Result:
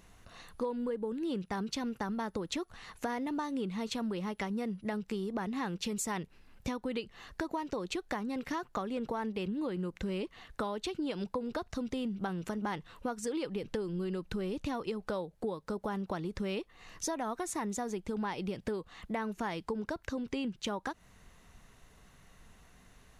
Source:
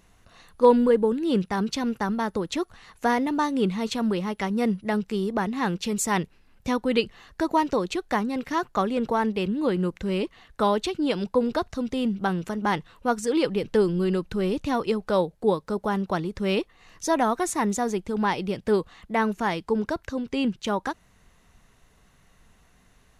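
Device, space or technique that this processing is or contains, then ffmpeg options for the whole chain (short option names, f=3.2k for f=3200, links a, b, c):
serial compression, peaks first: -af "acompressor=threshold=-29dB:ratio=6,acompressor=threshold=-38dB:ratio=1.5"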